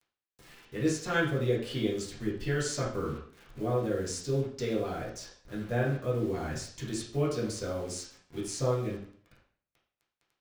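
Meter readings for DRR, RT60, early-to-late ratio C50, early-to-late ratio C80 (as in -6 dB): -7.0 dB, 0.55 s, 4.5 dB, 9.0 dB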